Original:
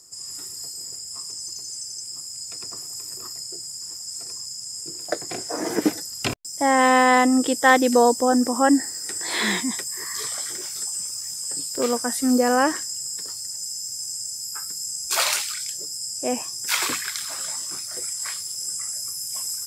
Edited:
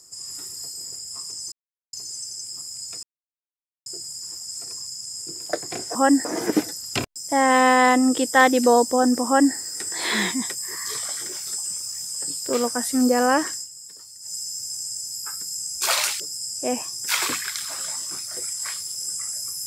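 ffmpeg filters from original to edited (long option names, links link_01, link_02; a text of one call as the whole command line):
ffmpeg -i in.wav -filter_complex "[0:a]asplit=9[link_01][link_02][link_03][link_04][link_05][link_06][link_07][link_08][link_09];[link_01]atrim=end=1.52,asetpts=PTS-STARTPTS,afade=type=out:start_time=1.516:duration=0.004:curve=hsin,apad=pad_dur=0.41[link_10];[link_02]atrim=start=1.52:end=2.62,asetpts=PTS-STARTPTS,afade=type=in:duration=0.004:curve=hsin,afade=type=out:start_time=1.096:duration=0.004:curve=hsin[link_11];[link_03]atrim=start=2.62:end=3.45,asetpts=PTS-STARTPTS,volume=0[link_12];[link_04]atrim=start=3.45:end=5.542,asetpts=PTS-STARTPTS,afade=type=in:duration=0.004:curve=hsin[link_13];[link_05]atrim=start=8.548:end=8.852[link_14];[link_06]atrim=start=5.538:end=12.97,asetpts=PTS-STARTPTS,afade=type=out:start_time=7.282:duration=0.15:curve=qsin:silence=0.298538[link_15];[link_07]atrim=start=12.97:end=13.5,asetpts=PTS-STARTPTS,volume=-10.5dB[link_16];[link_08]atrim=start=13.5:end=15.492,asetpts=PTS-STARTPTS,afade=type=in:duration=0.15:curve=qsin:silence=0.298538[link_17];[link_09]atrim=start=15.798[link_18];[link_10][link_11][link_12][link_13]concat=n=4:v=0:a=1[link_19];[link_19][link_14]acrossfade=duration=0.004:curve1=hsin:curve2=hsin[link_20];[link_15][link_16][link_17]concat=n=3:v=0:a=1[link_21];[link_20][link_21]acrossfade=duration=0.004:curve1=hsin:curve2=hsin[link_22];[link_22][link_18]acrossfade=duration=0.004:curve1=hsin:curve2=hsin" out.wav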